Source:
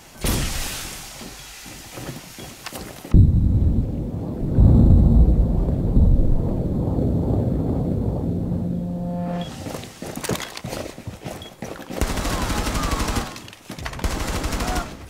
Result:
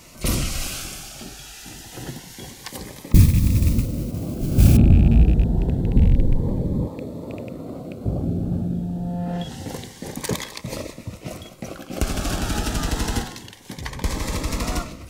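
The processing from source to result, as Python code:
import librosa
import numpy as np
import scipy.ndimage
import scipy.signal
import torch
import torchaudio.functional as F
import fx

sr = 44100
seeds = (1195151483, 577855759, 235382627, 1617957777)

y = fx.rattle_buzz(x, sr, strikes_db=-14.0, level_db=-25.0)
y = fx.mod_noise(y, sr, seeds[0], snr_db=19, at=(3.08, 4.77))
y = fx.highpass(y, sr, hz=720.0, slope=6, at=(6.87, 8.05))
y = fx.notch_cascade(y, sr, direction='rising', hz=0.27)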